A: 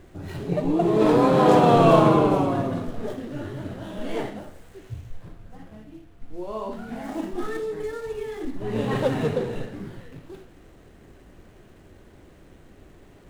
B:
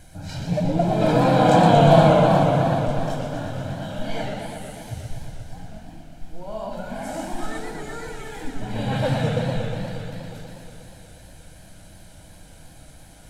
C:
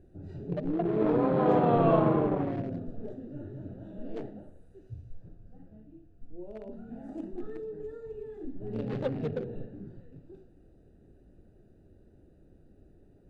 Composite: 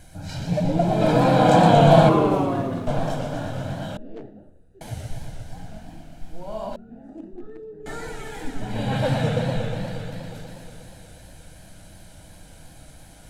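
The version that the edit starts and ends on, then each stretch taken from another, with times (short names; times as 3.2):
B
2.09–2.87 from A
3.97–4.81 from C
6.76–7.86 from C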